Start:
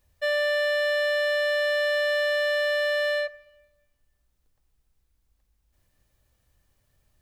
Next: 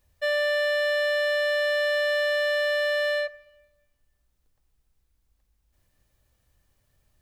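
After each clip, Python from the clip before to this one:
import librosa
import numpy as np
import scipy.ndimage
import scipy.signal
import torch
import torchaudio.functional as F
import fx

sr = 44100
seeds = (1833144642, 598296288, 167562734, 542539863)

y = x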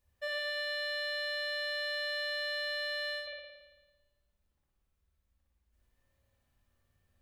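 y = fx.comb_fb(x, sr, f0_hz=78.0, decay_s=0.55, harmonics='odd', damping=0.0, mix_pct=70)
y = fx.rev_spring(y, sr, rt60_s=1.2, pass_ms=(55,), chirp_ms=35, drr_db=-3.5)
y = y * librosa.db_to_amplitude(-1.5)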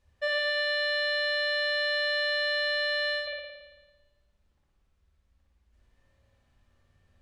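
y = fx.air_absorb(x, sr, metres=70.0)
y = y * librosa.db_to_amplitude(8.5)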